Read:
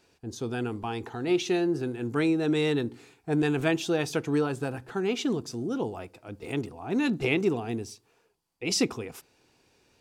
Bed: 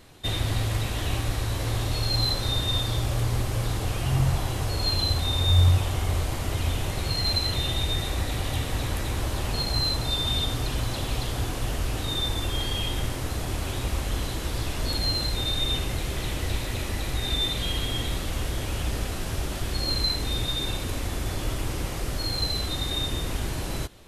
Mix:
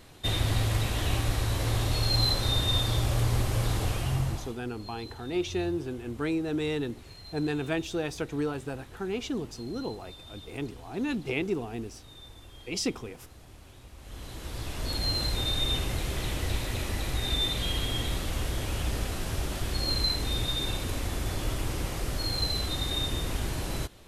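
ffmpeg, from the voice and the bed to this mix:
ffmpeg -i stem1.wav -i stem2.wav -filter_complex "[0:a]adelay=4050,volume=-4.5dB[link_01];[1:a]volume=19dB,afade=type=out:start_time=3.83:duration=0.76:silence=0.0891251,afade=type=in:start_time=13.97:duration=1.28:silence=0.105925[link_02];[link_01][link_02]amix=inputs=2:normalize=0" out.wav

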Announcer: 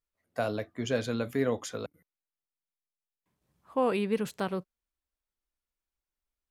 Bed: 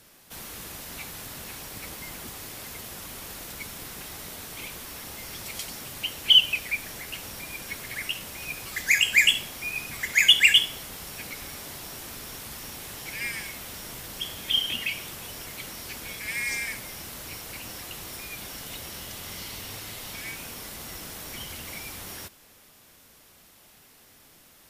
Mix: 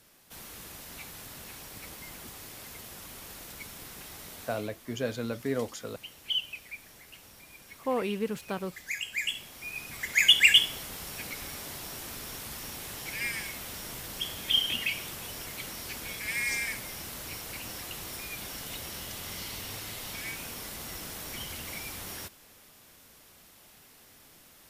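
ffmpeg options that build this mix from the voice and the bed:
ffmpeg -i stem1.wav -i stem2.wav -filter_complex "[0:a]adelay=4100,volume=-2.5dB[link_01];[1:a]volume=7.5dB,afade=type=out:start_time=4.43:duration=0.27:silence=0.375837,afade=type=in:start_time=9.18:duration=1.48:silence=0.223872[link_02];[link_01][link_02]amix=inputs=2:normalize=0" out.wav

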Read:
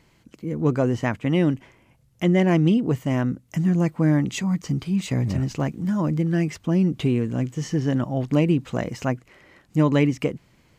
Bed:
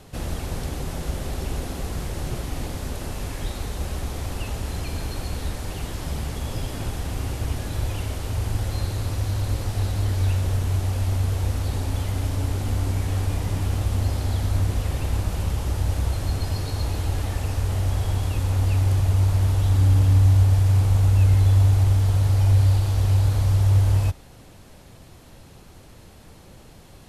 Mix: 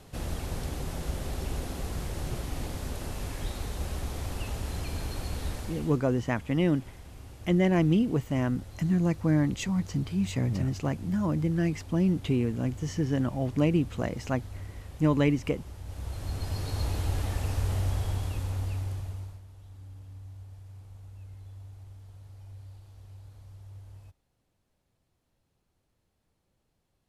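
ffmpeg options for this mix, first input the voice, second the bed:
ffmpeg -i stem1.wav -i stem2.wav -filter_complex "[0:a]adelay=5250,volume=-5dB[link_01];[1:a]volume=9dB,afade=type=out:start_time=5.55:duration=0.47:silence=0.211349,afade=type=in:start_time=15.84:duration=0.97:silence=0.199526,afade=type=out:start_time=17.7:duration=1.72:silence=0.0562341[link_02];[link_01][link_02]amix=inputs=2:normalize=0" out.wav

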